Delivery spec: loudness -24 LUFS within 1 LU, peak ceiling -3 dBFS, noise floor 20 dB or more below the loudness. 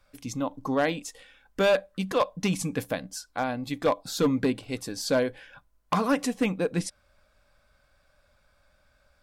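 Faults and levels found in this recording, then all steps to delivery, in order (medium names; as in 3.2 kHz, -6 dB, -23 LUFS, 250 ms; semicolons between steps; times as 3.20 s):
clipped samples 0.7%; clipping level -16.5 dBFS; loudness -28.0 LUFS; peak level -16.5 dBFS; loudness target -24.0 LUFS
-> clip repair -16.5 dBFS; trim +4 dB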